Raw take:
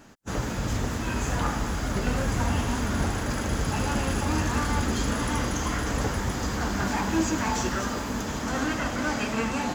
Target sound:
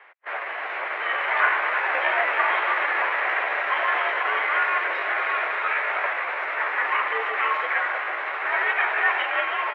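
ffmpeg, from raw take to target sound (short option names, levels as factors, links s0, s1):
-af "aecho=1:1:306:0.335,asetrate=50951,aresample=44100,atempo=0.865537,crystalizer=i=9:c=0,dynaudnorm=f=240:g=9:m=3.76,highpass=f=500:t=q:w=0.5412,highpass=f=500:t=q:w=1.307,lowpass=f=2300:t=q:w=0.5176,lowpass=f=2300:t=q:w=0.7071,lowpass=f=2300:t=q:w=1.932,afreqshift=74"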